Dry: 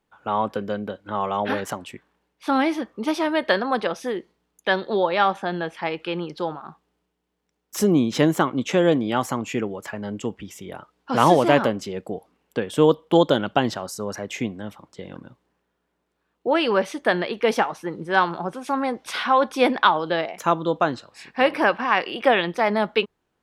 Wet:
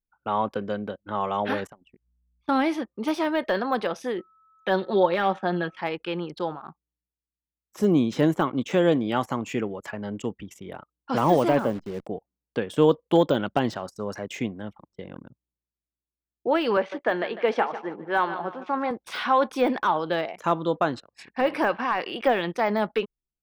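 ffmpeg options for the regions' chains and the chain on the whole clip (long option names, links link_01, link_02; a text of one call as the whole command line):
ffmpeg -i in.wav -filter_complex "[0:a]asettb=1/sr,asplit=3[link_01][link_02][link_03];[link_01]atrim=end=1.674[link_04];[link_02]atrim=start=1.67:end=2.49,asetpts=PTS-STARTPTS,afade=type=in:duration=0.004:curve=qsin,afade=type=out:start_time=0.816:duration=0.004:curve=qsin,aeval=exprs='val(0)+0.00141*(sin(2*PI*60*n/s)+sin(2*PI*2*60*n/s)/2+sin(2*PI*3*60*n/s)/3+sin(2*PI*4*60*n/s)/4+sin(2*PI*5*60*n/s)/5)':channel_layout=same,acompressor=threshold=-53dB:ratio=2:attack=3.2:release=140:knee=1:detection=peak[link_05];[link_03]atrim=start=2.486[link_06];[link_04][link_05]acrossfade=duration=0.004:curve1=hsin:curve2=qsin[link_07];[link_07][link_06]acrossfade=duration=0.004:curve1=qsin:curve2=hsin,asettb=1/sr,asplit=3[link_08][link_09][link_10];[link_08]atrim=end=4.184[link_11];[link_09]atrim=start=4.18:end=5.77,asetpts=PTS-STARTPTS,afade=type=in:duration=0.004:curve=qsin,afade=type=out:start_time=1.586:duration=0.004:curve=qsin,highshelf=frequency=9000:gain=-11,aecho=1:1:5.5:0.58,atrim=end_sample=70119,aeval=exprs='val(0)+0.00355*sin(2*PI*1300*n/s)':channel_layout=same[link_12];[link_10]atrim=start=5.766[link_13];[link_11][link_12]acrossfade=duration=0.004:curve1=hsin:curve2=qsin[link_14];[link_14][link_13]acrossfade=duration=0.004:curve1=qsin:curve2=hsin,asettb=1/sr,asplit=3[link_15][link_16][link_17];[link_15]atrim=end=11.594[link_18];[link_16]atrim=start=11.59:end=12.07,asetpts=PTS-STARTPTS,afade=type=in:duration=0.004:curve=qsin,afade=type=out:start_time=0.476:duration=0.004:curve=qsin,highshelf=frequency=3900:gain=-9,bandreject=frequency=71.84:width_type=h:width=4,bandreject=frequency=143.68:width_type=h:width=4,acrusher=bits=7:dc=4:mix=0:aa=0.000001[link_19];[link_17]atrim=start=12.066[link_20];[link_18][link_19]acrossfade=duration=0.004:curve1=hsin:curve2=qsin[link_21];[link_21][link_20]acrossfade=duration=0.004:curve1=qsin:curve2=hsin,asettb=1/sr,asplit=3[link_22][link_23][link_24];[link_22]atrim=end=16.774[link_25];[link_23]atrim=start=16.77:end=18.91,asetpts=PTS-STARTPTS,afade=type=in:duration=0.004:curve=qsin,afade=type=out:start_time=2.136:duration=0.004:curve=qsin,highpass=260,lowpass=3100,aecho=1:1:150|300|450|600:0.2|0.0778|0.0303|0.0118,atrim=end_sample=94374[link_26];[link_24]atrim=start=18.906[link_27];[link_25][link_26]acrossfade=duration=0.004:curve1=hsin:curve2=qsin[link_28];[link_28][link_27]acrossfade=duration=0.004:curve1=qsin:curve2=hsin,deesser=0.85,anlmdn=0.158,volume=-2dB" out.wav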